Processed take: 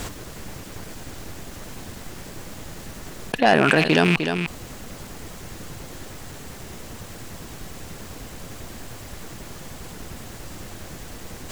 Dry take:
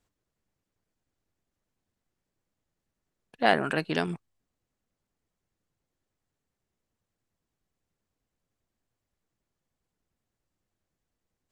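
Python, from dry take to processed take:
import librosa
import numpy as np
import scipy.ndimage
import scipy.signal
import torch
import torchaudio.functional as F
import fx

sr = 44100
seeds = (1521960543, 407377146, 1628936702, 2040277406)

p1 = fx.rattle_buzz(x, sr, strikes_db=-44.0, level_db=-24.0)
p2 = fx.fold_sine(p1, sr, drive_db=7, ceiling_db=-4.5)
p3 = p1 + (p2 * librosa.db_to_amplitude(-8.0))
p4 = p3 + 10.0 ** (-23.5 / 20.0) * np.pad(p3, (int(304 * sr / 1000.0), 0))[:len(p3)]
p5 = fx.env_flatten(p4, sr, amount_pct=70)
y = p5 * librosa.db_to_amplitude(-1.0)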